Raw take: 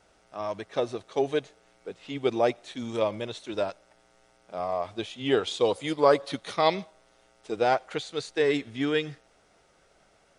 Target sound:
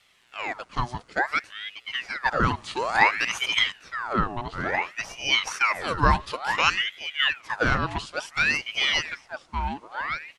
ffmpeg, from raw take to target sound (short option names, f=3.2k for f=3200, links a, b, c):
-filter_complex "[0:a]asettb=1/sr,asplit=3[a][b][c];[a]atrim=end=2.514[d];[b]atrim=start=2.51:end=3.59,asetpts=PTS-STARTPTS,afade=t=in:d=0.004:c=qsin,afade=t=out:st=1.076:d=0.004:c=qsin,acontrast=75[e];[c]atrim=start=3.586[f];[d][e]acrossfade=d=0.004:c1=hsin:c2=qsin[g];[g][f]acrossfade=d=0.004:c1=qsin:c2=hsin,asplit=2[h][i];[i]adelay=1165,lowpass=f=1.2k:p=1,volume=-4dB,asplit=2[j][k];[k]adelay=1165,lowpass=f=1.2k:p=1,volume=0.18,asplit=2[l][m];[m]adelay=1165,lowpass=f=1.2k:p=1,volume=0.18[n];[h][j][l][n]amix=inputs=4:normalize=0,aeval=exprs='val(0)*sin(2*PI*1600*n/s+1600*0.7/0.57*sin(2*PI*0.57*n/s))':c=same,volume=3.5dB"